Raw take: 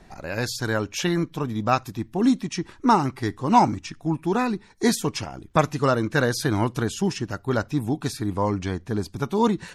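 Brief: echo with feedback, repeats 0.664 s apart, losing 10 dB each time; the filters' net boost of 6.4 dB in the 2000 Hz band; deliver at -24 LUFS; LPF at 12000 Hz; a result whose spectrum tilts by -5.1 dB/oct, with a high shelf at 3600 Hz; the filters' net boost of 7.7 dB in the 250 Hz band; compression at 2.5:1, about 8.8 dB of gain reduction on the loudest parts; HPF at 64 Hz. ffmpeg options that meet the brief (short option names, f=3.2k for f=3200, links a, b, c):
-af "highpass=64,lowpass=12k,equalizer=f=250:t=o:g=9,equalizer=f=2k:t=o:g=7,highshelf=f=3.6k:g=6,acompressor=threshold=-20dB:ratio=2.5,aecho=1:1:664|1328|1992|2656:0.316|0.101|0.0324|0.0104,volume=-0.5dB"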